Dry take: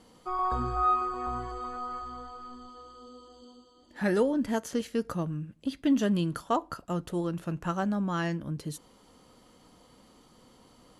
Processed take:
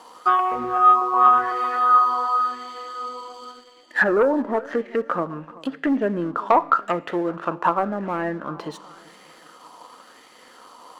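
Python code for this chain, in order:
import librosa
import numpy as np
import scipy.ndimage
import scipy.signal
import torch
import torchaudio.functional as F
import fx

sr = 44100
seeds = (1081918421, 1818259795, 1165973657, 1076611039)

p1 = fx.env_lowpass_down(x, sr, base_hz=610.0, full_db=-26.5)
p2 = scipy.signal.sosfilt(scipy.signal.butter(2, 450.0, 'highpass', fs=sr, output='sos'), p1)
p3 = fx.notch(p2, sr, hz=2200.0, q=16.0)
p4 = fx.leveller(p3, sr, passes=1)
p5 = fx.fold_sine(p4, sr, drive_db=6, ceiling_db=-14.5)
p6 = p5 + fx.echo_feedback(p5, sr, ms=384, feedback_pct=46, wet_db=-21.0, dry=0)
p7 = fx.rev_schroeder(p6, sr, rt60_s=0.84, comb_ms=26, drr_db=19.0)
y = fx.bell_lfo(p7, sr, hz=0.92, low_hz=970.0, high_hz=2100.0, db=13)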